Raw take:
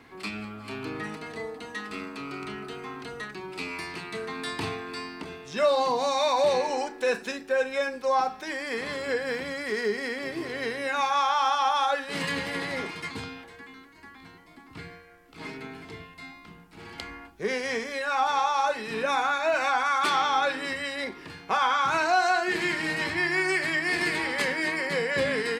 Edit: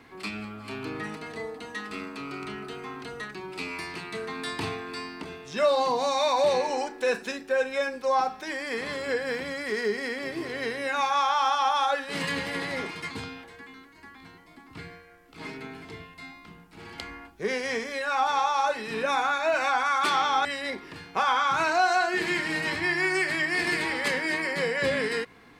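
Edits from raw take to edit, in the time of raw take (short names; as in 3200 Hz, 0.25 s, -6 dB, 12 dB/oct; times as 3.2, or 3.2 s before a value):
20.45–20.79 cut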